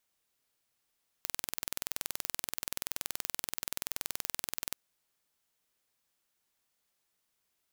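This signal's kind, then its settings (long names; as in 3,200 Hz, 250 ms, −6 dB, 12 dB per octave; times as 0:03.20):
impulse train 21 per second, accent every 0, −6.5 dBFS 3.49 s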